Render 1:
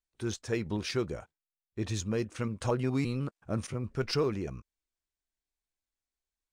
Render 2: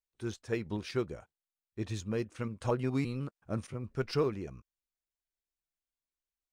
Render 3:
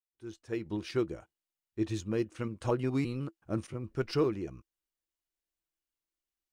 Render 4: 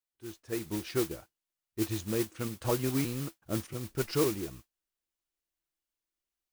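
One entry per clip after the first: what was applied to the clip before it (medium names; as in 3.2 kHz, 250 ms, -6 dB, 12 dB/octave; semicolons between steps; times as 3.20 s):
dynamic bell 6.3 kHz, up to -4 dB, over -53 dBFS, Q 1.4; upward expansion 1.5:1, over -38 dBFS
fade-in on the opening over 0.94 s; small resonant body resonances 330/2900 Hz, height 10 dB, ringing for 85 ms
modulation noise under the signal 10 dB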